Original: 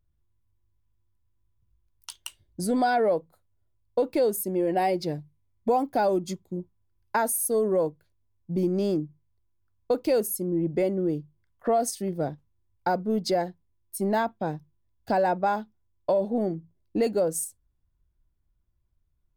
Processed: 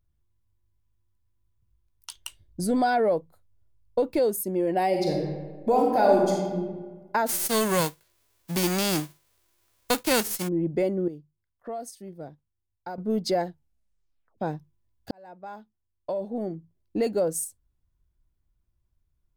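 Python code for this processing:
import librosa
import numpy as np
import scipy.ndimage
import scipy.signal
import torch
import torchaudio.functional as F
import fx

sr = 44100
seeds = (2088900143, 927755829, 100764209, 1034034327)

y = fx.low_shelf(x, sr, hz=85.0, db=9.5, at=(2.15, 4.19))
y = fx.reverb_throw(y, sr, start_s=4.87, length_s=1.73, rt60_s=1.4, drr_db=-1.5)
y = fx.envelope_flatten(y, sr, power=0.3, at=(7.26, 10.47), fade=0.02)
y = fx.edit(y, sr, fx.clip_gain(start_s=11.08, length_s=1.9, db=-11.5),
    fx.tape_stop(start_s=13.48, length_s=0.9),
    fx.fade_in_span(start_s=15.11, length_s=2.16), tone=tone)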